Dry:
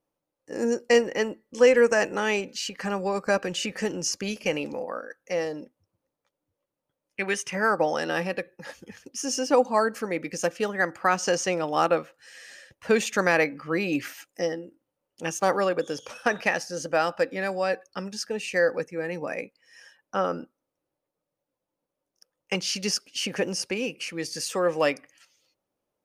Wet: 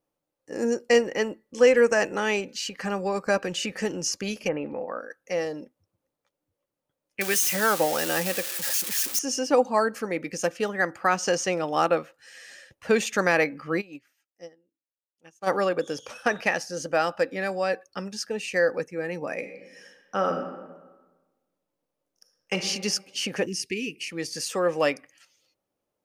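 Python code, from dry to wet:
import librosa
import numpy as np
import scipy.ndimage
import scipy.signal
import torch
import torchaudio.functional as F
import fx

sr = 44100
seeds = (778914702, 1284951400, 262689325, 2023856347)

y = fx.lowpass(x, sr, hz=fx.line((4.47, 1600.0), (4.99, 4100.0)), slope=24, at=(4.47, 4.99), fade=0.02)
y = fx.crossing_spikes(y, sr, level_db=-18.0, at=(7.21, 9.19))
y = fx.upward_expand(y, sr, threshold_db=-33.0, expansion=2.5, at=(13.8, 15.46), fade=0.02)
y = fx.reverb_throw(y, sr, start_s=19.36, length_s=3.21, rt60_s=1.3, drr_db=5.0)
y = fx.cheby1_bandstop(y, sr, low_hz=440.0, high_hz=1800.0, order=5, at=(23.45, 24.1), fade=0.02)
y = fx.notch(y, sr, hz=970.0, q=27.0)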